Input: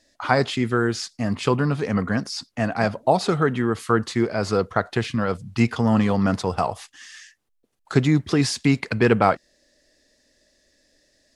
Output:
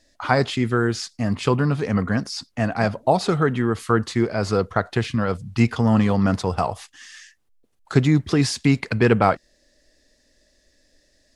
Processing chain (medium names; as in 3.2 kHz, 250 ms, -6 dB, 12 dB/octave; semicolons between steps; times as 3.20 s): bass shelf 68 Hz +11 dB